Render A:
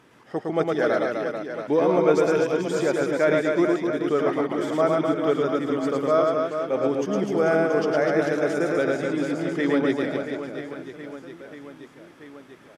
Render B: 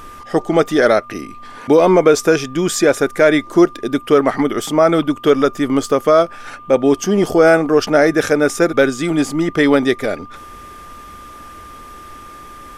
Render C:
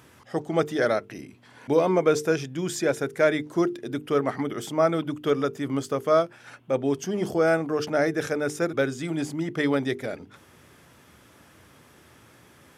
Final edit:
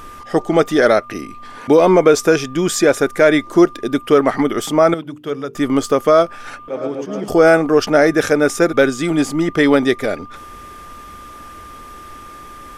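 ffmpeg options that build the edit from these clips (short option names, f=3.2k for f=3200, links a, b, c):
-filter_complex "[1:a]asplit=3[a][b][c];[a]atrim=end=4.942[d];[2:a]atrim=start=4.938:end=5.552[e];[b]atrim=start=5.548:end=6.682[f];[0:a]atrim=start=6.678:end=7.282[g];[c]atrim=start=7.278[h];[d][e]acrossfade=d=0.004:c1=hsin:c2=hsin[i];[i][f]acrossfade=d=0.004:c1=hsin:c2=hsin[j];[j][g]acrossfade=d=0.004:c1=hsin:c2=hsin[k];[k][h]acrossfade=d=0.004:c1=hsin:c2=hsin"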